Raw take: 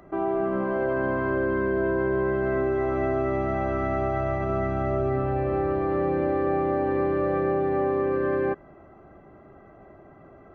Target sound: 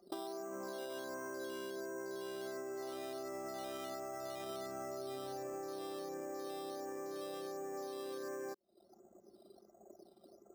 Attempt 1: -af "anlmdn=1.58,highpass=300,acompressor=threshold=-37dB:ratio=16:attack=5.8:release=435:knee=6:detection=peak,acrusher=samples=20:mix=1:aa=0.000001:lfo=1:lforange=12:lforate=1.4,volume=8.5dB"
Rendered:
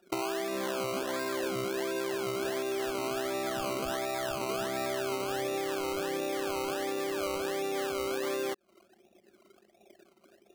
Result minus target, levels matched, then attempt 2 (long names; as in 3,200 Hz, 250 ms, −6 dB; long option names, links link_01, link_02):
downward compressor: peak gain reduction −11 dB; sample-and-hold swept by an LFO: distortion +9 dB
-af "anlmdn=1.58,highpass=300,acompressor=threshold=-48.5dB:ratio=16:attack=5.8:release=435:knee=6:detection=peak,acrusher=samples=8:mix=1:aa=0.000001:lfo=1:lforange=4.8:lforate=1.4,volume=8.5dB"